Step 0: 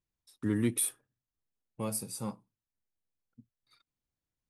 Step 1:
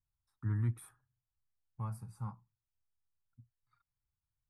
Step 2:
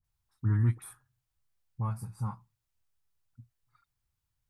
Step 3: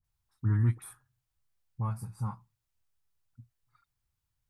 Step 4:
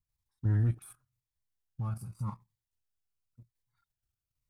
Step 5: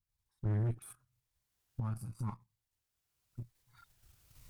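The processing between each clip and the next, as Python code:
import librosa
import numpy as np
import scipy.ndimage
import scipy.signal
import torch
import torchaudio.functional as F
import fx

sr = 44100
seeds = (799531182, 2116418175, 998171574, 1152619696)

y1 = fx.curve_eq(x, sr, hz=(120.0, 220.0, 530.0, 840.0, 1400.0, 2900.0), db=(0, -17, -26, -8, -7, -29))
y1 = F.gain(torch.from_numpy(y1), 4.0).numpy()
y2 = fx.dispersion(y1, sr, late='highs', ms=44.0, hz=1400.0)
y2 = F.gain(torch.from_numpy(y2), 7.0).numpy()
y3 = y2
y4 = fx.level_steps(y3, sr, step_db=9)
y4 = fx.leveller(y4, sr, passes=1)
y4 = fx.notch_cascade(y4, sr, direction='falling', hz=0.9)
y5 = fx.recorder_agc(y4, sr, target_db=-30.0, rise_db_per_s=16.0, max_gain_db=30)
y5 = fx.tube_stage(y5, sr, drive_db=30.0, bias=0.7)
y5 = F.gain(torch.from_numpy(y5), 1.0).numpy()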